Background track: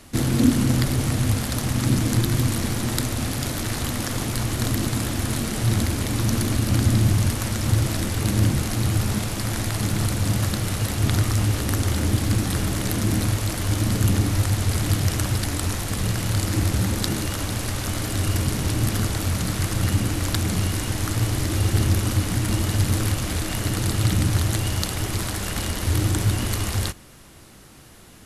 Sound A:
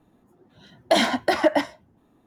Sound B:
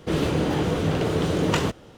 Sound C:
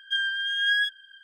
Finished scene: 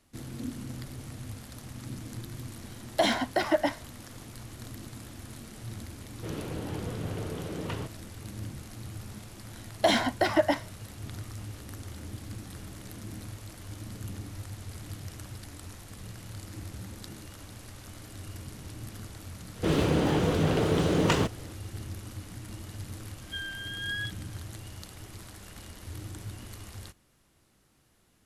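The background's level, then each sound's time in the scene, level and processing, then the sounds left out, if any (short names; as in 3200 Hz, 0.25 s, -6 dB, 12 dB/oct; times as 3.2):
background track -19.5 dB
2.08 add A -6 dB
6.16 add B -14 dB + LPF 4600 Hz
8.93 add A -4.5 dB
19.56 add B -2 dB
23.21 add C -11 dB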